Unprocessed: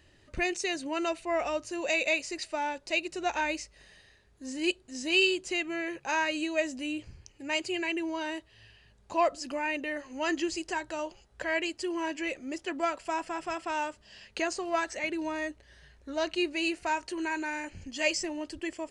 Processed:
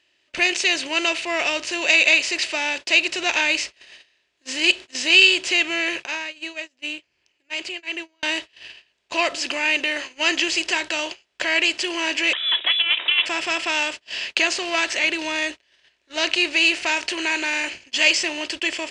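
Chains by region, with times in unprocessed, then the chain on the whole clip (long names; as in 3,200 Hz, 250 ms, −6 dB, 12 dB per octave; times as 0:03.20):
0:06.05–0:08.23: high-shelf EQ 3,400 Hz −6.5 dB + downward compressor 2 to 1, threshold −46 dBFS + shaped tremolo triangle 2.7 Hz, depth 75%
0:12.33–0:13.26: compressor whose output falls as the input rises −32 dBFS, ratio −0.5 + voice inversion scrambler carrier 3,700 Hz + high-pass filter 240 Hz 24 dB per octave
whole clip: compressor on every frequency bin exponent 0.6; meter weighting curve D; noise gate −30 dBFS, range −28 dB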